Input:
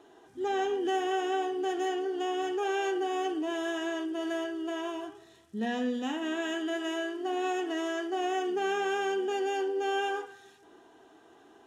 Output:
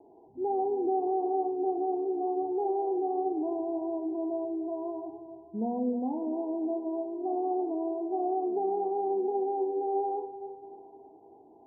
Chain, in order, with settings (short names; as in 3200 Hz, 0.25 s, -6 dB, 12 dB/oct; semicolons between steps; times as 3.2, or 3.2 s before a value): steep low-pass 950 Hz 96 dB/oct; on a send: split-band echo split 330 Hz, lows 0.189 s, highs 0.299 s, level -13 dB; on the sum: gain +1 dB